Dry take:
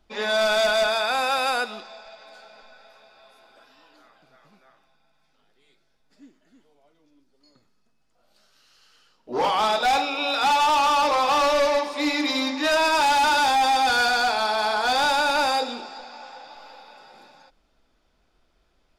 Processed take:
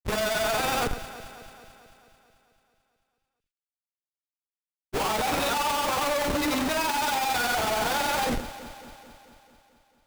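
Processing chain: Schmitt trigger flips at -28 dBFS; granular stretch 0.53×, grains 92 ms; echo whose repeats swap between lows and highs 110 ms, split 2 kHz, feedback 79%, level -12 dB

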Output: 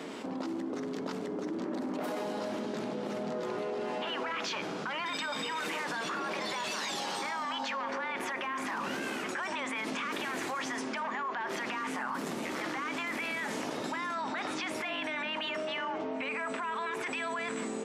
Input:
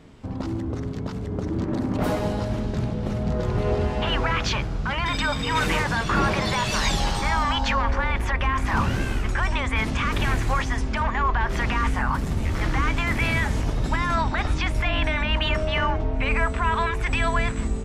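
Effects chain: high-pass 250 Hz 24 dB/octave; peak limiter -22.5 dBFS, peak gain reduction 10 dB; reverberation RT60 1.8 s, pre-delay 3 ms, DRR 15 dB; level flattener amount 70%; trim -7 dB

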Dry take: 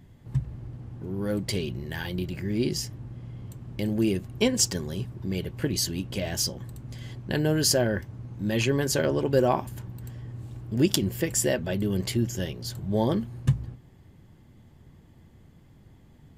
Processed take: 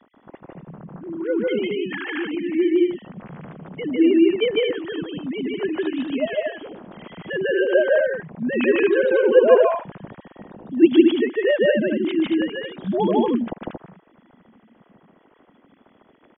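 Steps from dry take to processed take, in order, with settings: formants replaced by sine waves; on a send: loudspeakers at several distances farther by 52 m 0 dB, 78 m -4 dB; on the sum: trim +3.5 dB

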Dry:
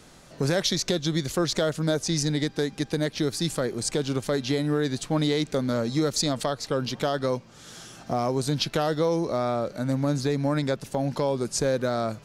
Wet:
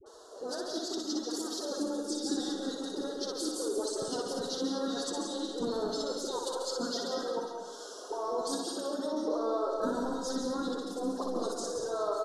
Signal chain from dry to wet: steep high-pass 210 Hz 48 dB/octave; gate with hold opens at -45 dBFS; reverb removal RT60 0.55 s; peaking EQ 11 kHz +5.5 dB 0.34 oct; compressor with a negative ratio -32 dBFS, ratio -1; formant-preserving pitch shift +10.5 st; phase dispersion highs, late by 59 ms, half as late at 870 Hz; harmony voices -5 st -15 dB; Butterworth band-stop 2.3 kHz, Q 0.85; distance through air 71 m; reverse bouncing-ball echo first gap 60 ms, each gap 1.3×, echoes 5; on a send at -4.5 dB: reverberation RT60 0.45 s, pre-delay 133 ms; on the sum: trim -2.5 dB

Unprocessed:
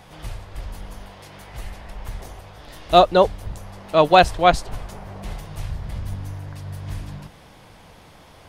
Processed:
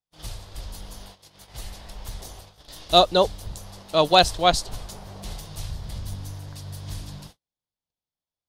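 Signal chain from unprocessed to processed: gate -40 dBFS, range -47 dB; resonant high shelf 3 kHz +8.5 dB, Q 1.5; trim -4 dB

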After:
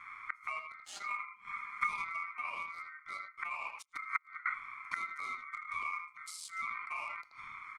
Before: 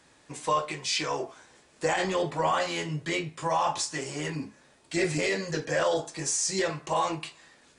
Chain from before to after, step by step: local Wiener filter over 41 samples; treble shelf 6.6 kHz +11.5 dB; speakerphone echo 80 ms, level -7 dB; 3.82–4.46 s: inverted gate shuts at -27 dBFS, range -27 dB; high-order bell 510 Hz +16 dB 1.2 oct; compression 2:1, threshold -21 dBFS, peak gain reduction 8 dB; ring modulator 1.7 kHz; inverted gate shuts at -29 dBFS, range -27 dB; 0.94–2.05 s: comb 5 ms, depth 84%; 6.56–7.22 s: decay stretcher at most 30 dB/s; trim +10 dB

